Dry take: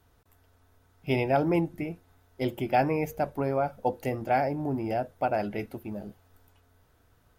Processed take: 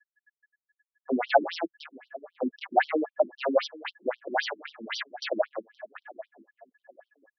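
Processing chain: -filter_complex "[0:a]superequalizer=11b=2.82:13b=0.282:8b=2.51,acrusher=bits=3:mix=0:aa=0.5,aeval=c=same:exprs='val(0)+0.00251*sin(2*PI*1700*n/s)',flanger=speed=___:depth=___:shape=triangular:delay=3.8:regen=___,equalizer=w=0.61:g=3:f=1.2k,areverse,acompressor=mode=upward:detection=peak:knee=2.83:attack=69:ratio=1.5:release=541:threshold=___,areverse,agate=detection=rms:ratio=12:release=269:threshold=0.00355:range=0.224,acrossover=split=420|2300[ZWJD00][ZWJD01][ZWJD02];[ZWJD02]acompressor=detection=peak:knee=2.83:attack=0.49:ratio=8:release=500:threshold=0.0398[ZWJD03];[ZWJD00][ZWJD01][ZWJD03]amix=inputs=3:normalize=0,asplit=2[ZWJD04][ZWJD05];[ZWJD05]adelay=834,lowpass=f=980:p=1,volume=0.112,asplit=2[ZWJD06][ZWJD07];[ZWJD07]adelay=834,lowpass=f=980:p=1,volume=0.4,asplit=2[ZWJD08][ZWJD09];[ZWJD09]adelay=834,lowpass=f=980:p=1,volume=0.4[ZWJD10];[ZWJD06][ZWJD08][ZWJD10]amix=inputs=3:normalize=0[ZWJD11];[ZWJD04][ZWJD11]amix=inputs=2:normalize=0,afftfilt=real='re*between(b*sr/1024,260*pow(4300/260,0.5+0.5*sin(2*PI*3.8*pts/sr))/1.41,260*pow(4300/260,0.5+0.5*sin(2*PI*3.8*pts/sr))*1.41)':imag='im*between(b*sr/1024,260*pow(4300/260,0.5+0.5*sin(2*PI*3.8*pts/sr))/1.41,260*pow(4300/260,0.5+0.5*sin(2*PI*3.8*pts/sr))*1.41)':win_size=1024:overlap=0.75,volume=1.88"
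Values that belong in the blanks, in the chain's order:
0.82, 2.5, 27, 0.00398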